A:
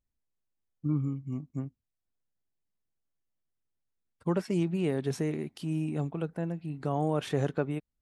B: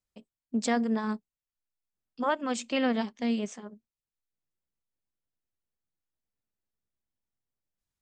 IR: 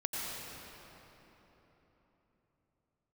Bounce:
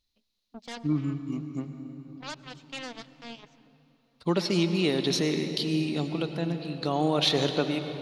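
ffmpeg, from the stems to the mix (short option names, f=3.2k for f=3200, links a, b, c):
-filter_complex "[0:a]equalizer=f=125:t=o:w=0.33:g=-9,equalizer=f=315:t=o:w=0.33:g=3,equalizer=f=1.6k:t=o:w=0.33:g=-5,equalizer=f=4k:t=o:w=0.33:g=11,equalizer=f=8k:t=o:w=0.33:g=-11,volume=-0.5dB,asplit=3[a][b][c];[b]volume=-8.5dB[d];[1:a]lowpass=3.4k,aeval=exprs='0.168*(cos(1*acos(clip(val(0)/0.168,-1,1)))-cos(1*PI/2))+0.0335*(cos(7*acos(clip(val(0)/0.168,-1,1)))-cos(7*PI/2))':c=same,volume=-16.5dB,asplit=2[e][f];[f]volume=-20dB[g];[c]apad=whole_len=353419[h];[e][h]sidechaincompress=threshold=-34dB:ratio=8:attack=16:release=577[i];[2:a]atrim=start_sample=2205[j];[d][g]amix=inputs=2:normalize=0[k];[k][j]afir=irnorm=-1:irlink=0[l];[a][i][l]amix=inputs=3:normalize=0,equalizer=f=4.5k:w=0.53:g=14"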